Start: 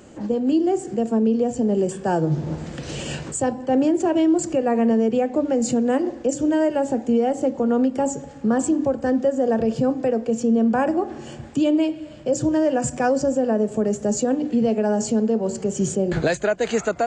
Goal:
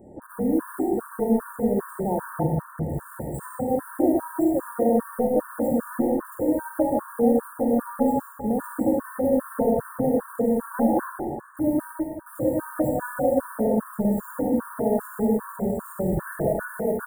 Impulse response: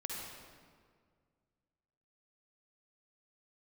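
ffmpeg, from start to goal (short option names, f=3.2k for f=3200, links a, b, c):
-filter_complex "[0:a]asplit=3[a][b][c];[a]afade=t=out:st=15.43:d=0.02[d];[b]asubboost=boost=3:cutoff=97,afade=t=in:st=15.43:d=0.02,afade=t=out:st=16.29:d=0.02[e];[c]afade=t=in:st=16.29:d=0.02[f];[d][e][f]amix=inputs=3:normalize=0,asplit=2[g][h];[h]aeval=exprs='(mod(15*val(0)+1,2)-1)/15':c=same,volume=-4dB[i];[g][i]amix=inputs=2:normalize=0,asuperstop=centerf=4000:order=12:qfactor=0.53,aecho=1:1:157.4|212.8:0.355|0.282[j];[1:a]atrim=start_sample=2205,afade=t=out:st=0.4:d=0.01,atrim=end_sample=18081[k];[j][k]afir=irnorm=-1:irlink=0,afftfilt=real='re*gt(sin(2*PI*2.5*pts/sr)*(1-2*mod(floor(b*sr/1024/920),2)),0)':imag='im*gt(sin(2*PI*2.5*pts/sr)*(1-2*mod(floor(b*sr/1024/920),2)),0)':win_size=1024:overlap=0.75,volume=-2dB"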